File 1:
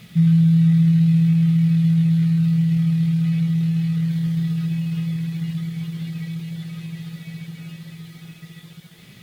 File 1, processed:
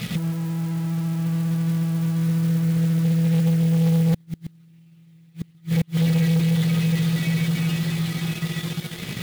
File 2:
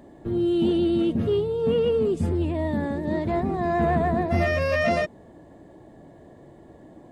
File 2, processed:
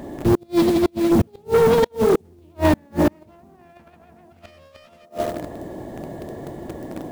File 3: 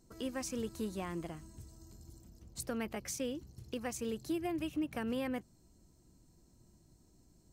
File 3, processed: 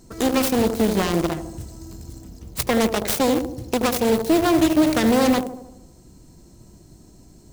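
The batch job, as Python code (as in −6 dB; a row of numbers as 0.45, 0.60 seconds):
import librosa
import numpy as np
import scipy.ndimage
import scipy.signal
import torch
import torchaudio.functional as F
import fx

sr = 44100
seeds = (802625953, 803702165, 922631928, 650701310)

p1 = fx.self_delay(x, sr, depth_ms=0.37)
p2 = p1 + fx.echo_wet_bandpass(p1, sr, ms=77, feedback_pct=54, hz=400.0, wet_db=-5.0, dry=0)
p3 = fx.over_compress(p2, sr, threshold_db=-23.0, ratio=-0.5)
p4 = fx.mod_noise(p3, sr, seeds[0], snr_db=26)
p5 = fx.quant_dither(p4, sr, seeds[1], bits=6, dither='none')
p6 = p4 + (p5 * librosa.db_to_amplitude(-8.0))
p7 = fx.gate_flip(p6, sr, shuts_db=-12.0, range_db=-41)
p8 = 10.0 ** (-22.5 / 20.0) * np.tanh(p7 / 10.0 ** (-22.5 / 20.0))
y = p8 * 10.0 ** (-22 / 20.0) / np.sqrt(np.mean(np.square(p8)))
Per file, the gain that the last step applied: +7.0, +12.0, +16.5 decibels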